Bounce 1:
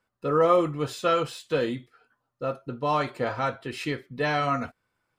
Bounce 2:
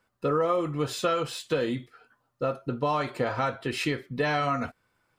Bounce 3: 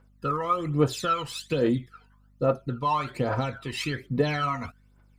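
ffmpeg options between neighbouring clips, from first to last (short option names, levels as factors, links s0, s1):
-af "acompressor=threshold=0.0355:ratio=4,volume=1.78"
-af "aphaser=in_gain=1:out_gain=1:delay=1.1:decay=0.71:speed=1.2:type=triangular,aeval=exprs='val(0)+0.00178*(sin(2*PI*50*n/s)+sin(2*PI*2*50*n/s)/2+sin(2*PI*3*50*n/s)/3+sin(2*PI*4*50*n/s)/4+sin(2*PI*5*50*n/s)/5)':c=same,volume=0.708"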